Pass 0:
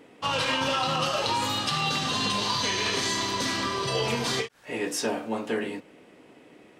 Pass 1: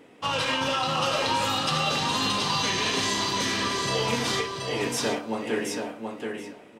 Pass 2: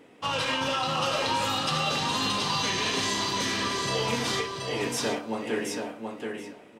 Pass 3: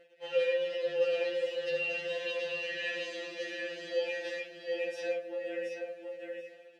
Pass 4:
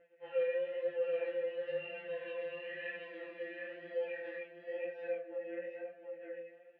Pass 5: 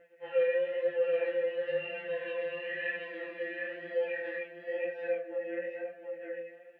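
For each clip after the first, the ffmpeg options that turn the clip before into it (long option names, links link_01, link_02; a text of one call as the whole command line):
ffmpeg -i in.wav -filter_complex "[0:a]bandreject=frequency=4400:width=26,asplit=2[link_01][link_02];[link_02]aecho=0:1:728|1456|2184:0.596|0.0953|0.0152[link_03];[link_01][link_03]amix=inputs=2:normalize=0" out.wav
ffmpeg -i in.wav -af "acontrast=80,volume=-8.5dB" out.wav
ffmpeg -i in.wav -filter_complex "[0:a]acrusher=bits=7:mix=0:aa=0.000001,asplit=3[link_01][link_02][link_03];[link_01]bandpass=frequency=530:width_type=q:width=8,volume=0dB[link_04];[link_02]bandpass=frequency=1840:width_type=q:width=8,volume=-6dB[link_05];[link_03]bandpass=frequency=2480:width_type=q:width=8,volume=-9dB[link_06];[link_04][link_05][link_06]amix=inputs=3:normalize=0,afftfilt=real='re*2.83*eq(mod(b,8),0)':imag='im*2.83*eq(mod(b,8),0)':win_size=2048:overlap=0.75,volume=6dB" out.wav
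ffmpeg -i in.wav -af "flanger=delay=16:depth=7.7:speed=1,lowpass=frequency=2200:width=0.5412,lowpass=frequency=2200:width=1.3066,volume=-2dB" out.wav
ffmpeg -i in.wav -af "equalizer=frequency=1800:width_type=o:width=0.39:gain=3.5,volume=5.5dB" out.wav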